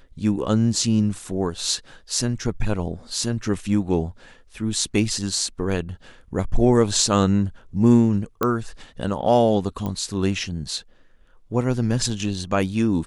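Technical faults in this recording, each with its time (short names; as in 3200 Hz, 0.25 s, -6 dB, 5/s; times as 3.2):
8.43 pop -8 dBFS
9.86 pop -16 dBFS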